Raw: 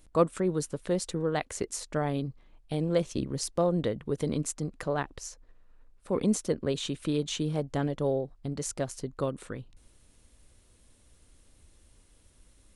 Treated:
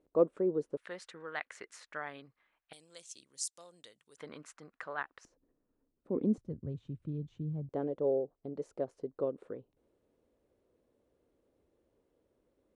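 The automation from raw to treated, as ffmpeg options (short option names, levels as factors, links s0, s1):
-af "asetnsamples=n=441:p=0,asendcmd='0.77 bandpass f 1700;2.73 bandpass f 7600;4.17 bandpass f 1500;5.25 bandpass f 290;6.38 bandpass f 110;7.69 bandpass f 450',bandpass=f=430:t=q:w=1.9:csg=0"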